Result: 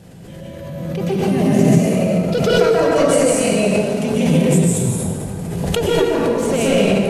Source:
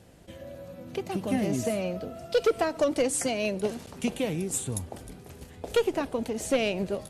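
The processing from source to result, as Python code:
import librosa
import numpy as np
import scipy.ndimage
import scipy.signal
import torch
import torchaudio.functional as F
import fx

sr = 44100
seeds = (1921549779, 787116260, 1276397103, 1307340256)

y = fx.peak_eq(x, sr, hz=160.0, db=14.5, octaves=0.41)
y = fx.rev_plate(y, sr, seeds[0], rt60_s=2.5, hf_ratio=0.6, predelay_ms=115, drr_db=-7.5)
y = fx.pre_swell(y, sr, db_per_s=26.0)
y = y * 10.0 ** (1.5 / 20.0)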